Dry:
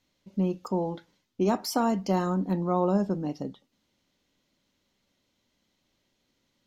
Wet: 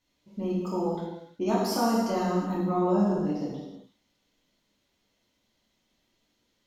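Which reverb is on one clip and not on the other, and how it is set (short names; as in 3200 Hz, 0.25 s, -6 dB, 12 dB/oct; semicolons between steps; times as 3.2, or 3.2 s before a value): non-linear reverb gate 0.41 s falling, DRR -7 dB; gain -6.5 dB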